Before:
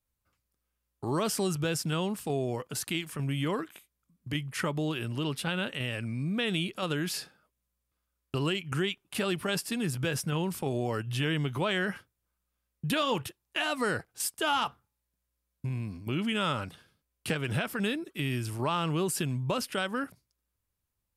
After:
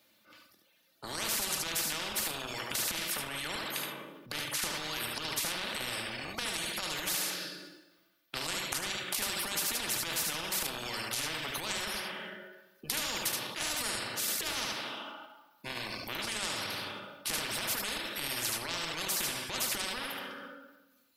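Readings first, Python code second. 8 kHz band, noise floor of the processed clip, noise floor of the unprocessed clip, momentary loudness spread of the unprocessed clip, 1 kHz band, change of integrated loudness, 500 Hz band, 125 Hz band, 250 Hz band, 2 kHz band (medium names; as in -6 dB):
+5.5 dB, -67 dBFS, -83 dBFS, 7 LU, -4.5 dB, -2.0 dB, -9.5 dB, -16.5 dB, -13.0 dB, -1.0 dB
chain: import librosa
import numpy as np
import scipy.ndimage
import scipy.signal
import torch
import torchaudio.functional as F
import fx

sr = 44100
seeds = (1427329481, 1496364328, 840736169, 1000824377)

p1 = scipy.signal.sosfilt(scipy.signal.butter(4, 170.0, 'highpass', fs=sr, output='sos'), x)
p2 = p1 + 0.54 * np.pad(p1, (int(3.4 * sr / 1000.0), 0))[:len(p1)]
p3 = fx.rev_plate(p2, sr, seeds[0], rt60_s=1.1, hf_ratio=0.8, predelay_ms=0, drr_db=3.0)
p4 = fx.level_steps(p3, sr, step_db=9)
p5 = p3 + (p4 * 10.0 ** (0.0 / 20.0))
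p6 = fx.graphic_eq_10(p5, sr, hz=(250, 1000, 4000, 8000), db=(-6, -6, 5, -11))
p7 = fx.dereverb_blind(p6, sr, rt60_s=1.4)
p8 = fx.high_shelf(p7, sr, hz=9500.0, db=-8.0)
p9 = p8 + 10.0 ** (-8.0 / 20.0) * np.pad(p8, (int(73 * sr / 1000.0), 0))[:len(p8)]
p10 = fx.transient(p9, sr, attack_db=-10, sustain_db=3)
p11 = fx.spectral_comp(p10, sr, ratio=10.0)
y = p11 * 10.0 ** (-2.5 / 20.0)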